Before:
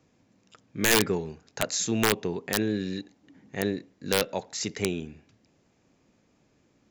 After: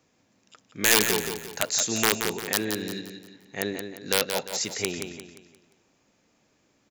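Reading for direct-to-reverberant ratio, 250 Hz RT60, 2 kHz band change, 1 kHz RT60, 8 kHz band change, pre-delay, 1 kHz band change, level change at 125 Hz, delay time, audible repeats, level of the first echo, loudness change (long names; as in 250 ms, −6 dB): no reverb audible, no reverb audible, +2.5 dB, no reverb audible, +5.0 dB, no reverb audible, +1.5 dB, −5.0 dB, 175 ms, 4, −7.0 dB, +2.0 dB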